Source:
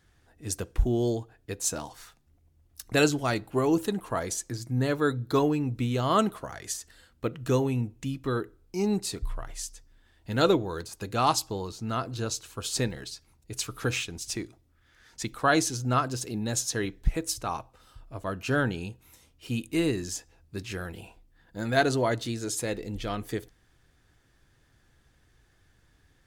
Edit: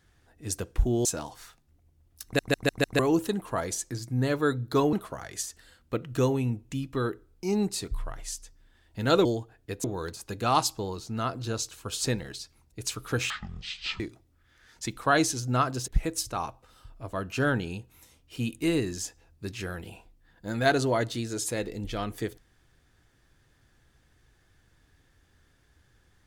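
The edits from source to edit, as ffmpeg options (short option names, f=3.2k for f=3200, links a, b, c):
-filter_complex "[0:a]asplit=13[a][b][c][d][e][f][g][h][i][j][k][l][m];[a]atrim=end=1.052[n];[b]atrim=start=1.638:end=2.982[o];[c]atrim=start=2.828:end=2.982[p];[d]atrim=start=2.828:end=2.982[q];[e]atrim=start=2.828:end=2.982[r];[f]atrim=start=2.828:end=2.982[s];[g]atrim=start=3.578:end=5.522[t];[h]atrim=start=6.238:end=10.562[u];[i]atrim=start=1.048:end=1.642[v];[j]atrim=start=10.558:end=14.024[w];[k]atrim=start=14.02:end=14.37,asetpts=PTS-STARTPTS,asetrate=22050,aresample=44100[x];[l]atrim=start=14.366:end=16.252[y];[m]atrim=start=16.988[z];[n][o]acrossfade=d=0.004:c1=hsin:c2=hsin[aa];[aa][p]acrossfade=d=0.004:c1=hsin:c2=hsin[ab];[ab][q]acrossfade=d=0.004:c1=hsin:c2=hsin[ac];[ac][r]acrossfade=d=0.004:c1=hsin:c2=hsin[ad];[ad][s]acrossfade=d=0.004:c1=hsin:c2=hsin[ae];[ae][t]acrossfade=d=0.004:c1=hsin:c2=hsin[af];[af][u]acrossfade=d=0.004:c1=hsin:c2=hsin[ag];[ag][v]acrossfade=d=0.004:c1=hsin:c2=hsin[ah];[ah][w]acrossfade=d=0.004:c1=hsin:c2=hsin[ai];[ai][x]acrossfade=d=0.004:c1=hsin:c2=hsin[aj];[aj][y]acrossfade=d=0.004:c1=hsin:c2=hsin[ak];[ak][z]acrossfade=d=0.004:c1=hsin:c2=hsin"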